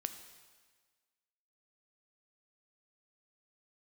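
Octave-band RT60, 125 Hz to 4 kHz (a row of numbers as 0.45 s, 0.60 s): 1.5 s, 1.4 s, 1.5 s, 1.5 s, 1.5 s, 1.4 s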